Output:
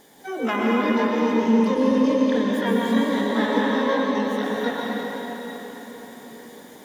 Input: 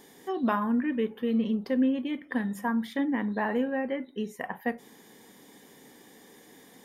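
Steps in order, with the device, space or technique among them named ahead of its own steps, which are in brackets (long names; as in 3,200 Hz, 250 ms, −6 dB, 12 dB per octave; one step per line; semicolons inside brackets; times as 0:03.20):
0:01.91–0:02.83: high-pass filter 110 Hz 24 dB per octave
shimmer-style reverb (pitch-shifted copies added +12 semitones −4 dB; convolution reverb RT60 4.9 s, pre-delay 108 ms, DRR −5 dB)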